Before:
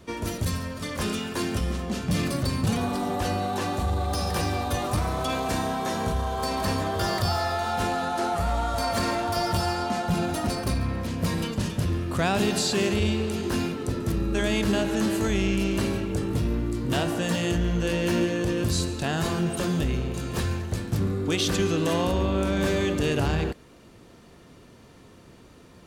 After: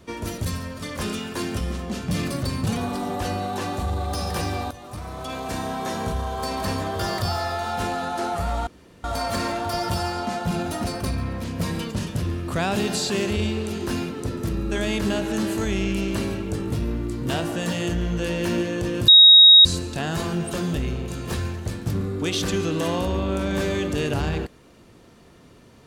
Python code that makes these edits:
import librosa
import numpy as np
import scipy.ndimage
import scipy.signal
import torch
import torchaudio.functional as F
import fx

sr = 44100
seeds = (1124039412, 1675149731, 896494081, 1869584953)

y = fx.edit(x, sr, fx.fade_in_from(start_s=4.71, length_s=1.12, floor_db=-17.0),
    fx.insert_room_tone(at_s=8.67, length_s=0.37),
    fx.insert_tone(at_s=18.71, length_s=0.57, hz=3780.0, db=-6.5), tone=tone)